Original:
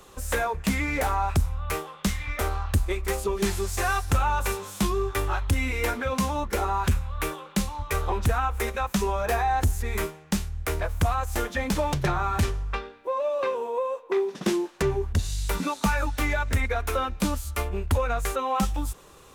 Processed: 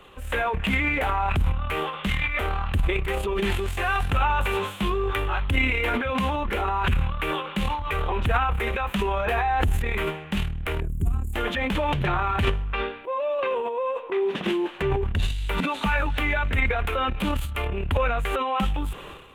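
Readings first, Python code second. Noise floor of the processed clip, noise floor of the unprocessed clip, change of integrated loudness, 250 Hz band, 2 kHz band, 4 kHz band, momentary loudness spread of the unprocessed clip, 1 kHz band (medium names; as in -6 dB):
-39 dBFS, -50 dBFS, +1.5 dB, +0.5 dB, +4.5 dB, +3.5 dB, 5 LU, +1.5 dB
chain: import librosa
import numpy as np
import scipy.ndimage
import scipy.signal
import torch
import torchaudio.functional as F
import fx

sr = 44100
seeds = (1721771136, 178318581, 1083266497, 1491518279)

y = fx.spec_box(x, sr, start_s=10.8, length_s=0.54, low_hz=420.0, high_hz=6600.0, gain_db=-27)
y = fx.transient(y, sr, attack_db=-3, sustain_db=11)
y = fx.high_shelf_res(y, sr, hz=4000.0, db=-10.5, q=3.0)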